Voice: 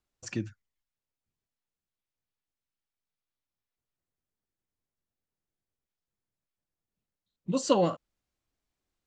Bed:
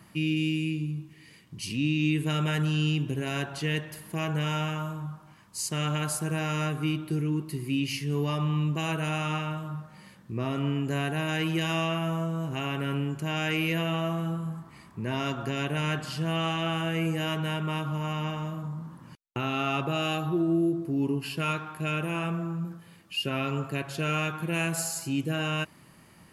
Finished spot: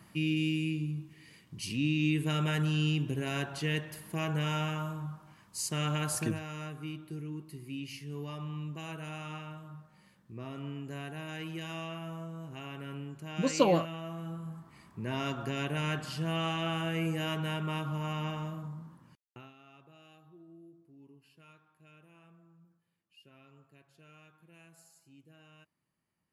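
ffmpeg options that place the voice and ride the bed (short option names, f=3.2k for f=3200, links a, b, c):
-filter_complex "[0:a]adelay=5900,volume=-1dB[a];[1:a]volume=5dB,afade=t=out:st=6.19:d=0.21:silence=0.354813,afade=t=in:st=14.03:d=1.16:silence=0.398107,afade=t=out:st=18.41:d=1.13:silence=0.0530884[b];[a][b]amix=inputs=2:normalize=0"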